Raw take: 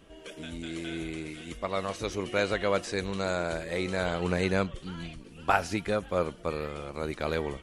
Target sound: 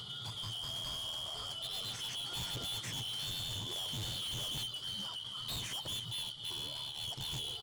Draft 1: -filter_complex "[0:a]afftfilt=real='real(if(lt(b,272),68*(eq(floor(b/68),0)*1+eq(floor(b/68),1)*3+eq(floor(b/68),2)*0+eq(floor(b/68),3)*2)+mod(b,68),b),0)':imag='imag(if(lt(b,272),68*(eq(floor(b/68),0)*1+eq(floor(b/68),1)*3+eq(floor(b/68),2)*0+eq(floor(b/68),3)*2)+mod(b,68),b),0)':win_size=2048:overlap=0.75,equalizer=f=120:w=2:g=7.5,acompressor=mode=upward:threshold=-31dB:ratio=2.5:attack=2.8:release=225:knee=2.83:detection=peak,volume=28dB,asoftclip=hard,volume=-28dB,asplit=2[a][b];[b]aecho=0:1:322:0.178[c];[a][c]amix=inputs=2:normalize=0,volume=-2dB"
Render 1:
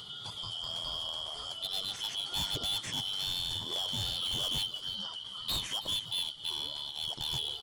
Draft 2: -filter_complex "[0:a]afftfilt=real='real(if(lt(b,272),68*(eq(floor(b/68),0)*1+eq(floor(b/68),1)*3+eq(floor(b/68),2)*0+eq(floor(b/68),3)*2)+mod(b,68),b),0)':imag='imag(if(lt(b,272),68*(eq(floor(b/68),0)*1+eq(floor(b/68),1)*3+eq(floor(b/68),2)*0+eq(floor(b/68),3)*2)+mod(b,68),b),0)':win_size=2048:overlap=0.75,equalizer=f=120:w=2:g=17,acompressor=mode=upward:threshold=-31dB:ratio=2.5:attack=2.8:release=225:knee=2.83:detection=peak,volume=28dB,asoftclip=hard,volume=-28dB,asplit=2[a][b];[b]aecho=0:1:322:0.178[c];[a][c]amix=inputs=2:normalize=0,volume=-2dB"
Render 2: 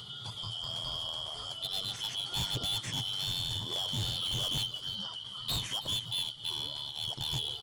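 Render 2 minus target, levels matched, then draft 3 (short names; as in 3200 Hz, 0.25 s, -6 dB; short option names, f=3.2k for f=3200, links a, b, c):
overloaded stage: distortion -4 dB
-filter_complex "[0:a]afftfilt=real='real(if(lt(b,272),68*(eq(floor(b/68),0)*1+eq(floor(b/68),1)*3+eq(floor(b/68),2)*0+eq(floor(b/68),3)*2)+mod(b,68),b),0)':imag='imag(if(lt(b,272),68*(eq(floor(b/68),0)*1+eq(floor(b/68),1)*3+eq(floor(b/68),2)*0+eq(floor(b/68),3)*2)+mod(b,68),b),0)':win_size=2048:overlap=0.75,equalizer=f=120:w=2:g=17,acompressor=mode=upward:threshold=-31dB:ratio=2.5:attack=2.8:release=225:knee=2.83:detection=peak,volume=36dB,asoftclip=hard,volume=-36dB,asplit=2[a][b];[b]aecho=0:1:322:0.178[c];[a][c]amix=inputs=2:normalize=0,volume=-2dB"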